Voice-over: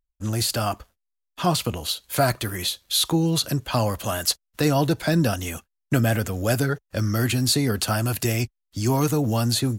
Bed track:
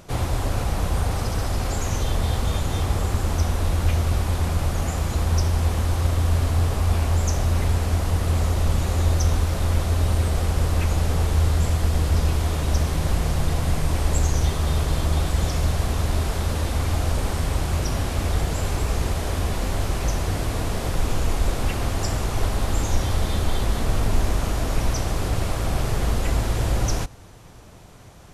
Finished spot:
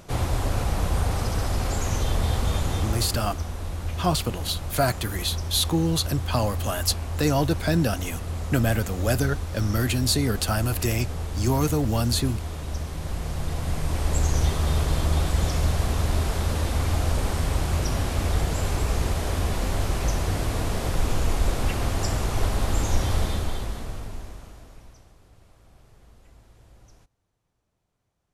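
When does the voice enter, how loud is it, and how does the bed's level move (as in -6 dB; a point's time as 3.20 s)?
2.60 s, -2.0 dB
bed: 2.69 s -1 dB
3.40 s -9.5 dB
12.92 s -9.5 dB
14.39 s -1 dB
23.20 s -1 dB
25.19 s -31 dB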